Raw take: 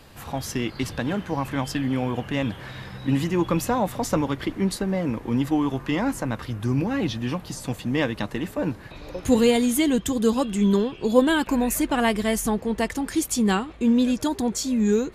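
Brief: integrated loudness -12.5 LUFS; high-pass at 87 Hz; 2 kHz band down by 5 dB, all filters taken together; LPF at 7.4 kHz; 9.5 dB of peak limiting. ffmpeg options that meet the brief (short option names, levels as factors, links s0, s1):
-af "highpass=87,lowpass=7400,equalizer=f=2000:t=o:g=-6.5,volume=5.01,alimiter=limit=0.794:level=0:latency=1"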